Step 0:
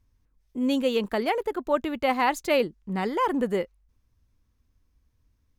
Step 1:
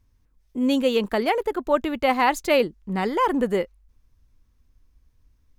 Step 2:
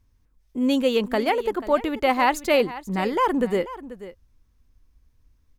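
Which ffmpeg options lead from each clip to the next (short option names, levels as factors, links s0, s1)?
-af "asubboost=boost=2:cutoff=60,volume=1.5"
-af "aecho=1:1:487:0.168"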